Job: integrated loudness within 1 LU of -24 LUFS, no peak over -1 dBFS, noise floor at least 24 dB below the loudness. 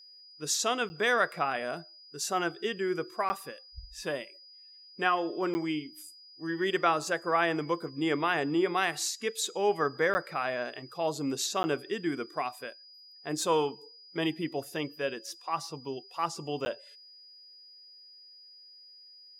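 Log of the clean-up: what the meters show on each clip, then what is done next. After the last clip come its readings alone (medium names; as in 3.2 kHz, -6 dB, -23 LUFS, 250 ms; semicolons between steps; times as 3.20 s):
dropouts 6; longest dropout 10 ms; steady tone 4.9 kHz; tone level -51 dBFS; loudness -31.0 LUFS; peak level -11.5 dBFS; loudness target -24.0 LUFS
-> interpolate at 0.89/3.29/5.54/10.14/11.63/16.65 s, 10 ms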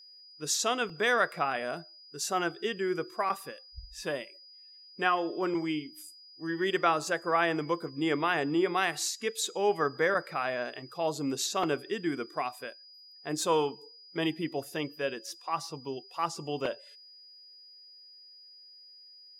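dropouts 0; steady tone 4.9 kHz; tone level -51 dBFS
-> band-stop 4.9 kHz, Q 30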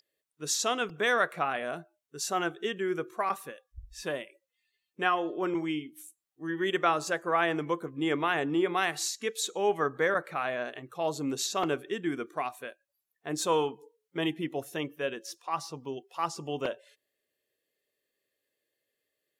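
steady tone not found; loudness -31.0 LUFS; peak level -11.5 dBFS; loudness target -24.0 LUFS
-> trim +7 dB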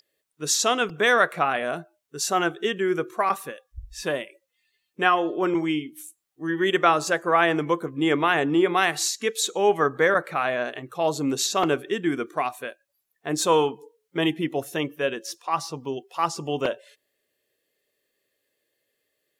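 loudness -24.0 LUFS; peak level -4.5 dBFS; noise floor -77 dBFS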